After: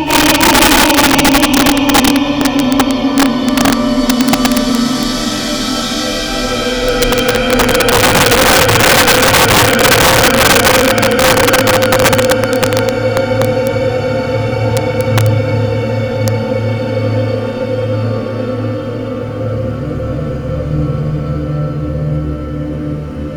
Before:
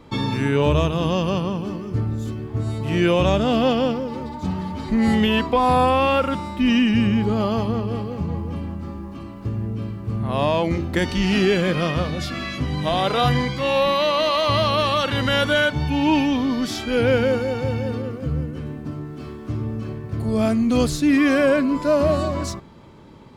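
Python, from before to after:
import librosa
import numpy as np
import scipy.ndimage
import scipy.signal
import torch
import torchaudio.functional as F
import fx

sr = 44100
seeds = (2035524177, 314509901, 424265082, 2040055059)

y = fx.paulstretch(x, sr, seeds[0], factor=9.8, window_s=0.5, from_s=16.16)
y = fx.rev_freeverb(y, sr, rt60_s=0.44, hf_ratio=0.6, predelay_ms=55, drr_db=-10.0)
y = (np.mod(10.0 ** (4.5 / 20.0) * y + 1.0, 2.0) - 1.0) / 10.0 ** (4.5 / 20.0)
y = y * librosa.db_to_amplitude(2.0)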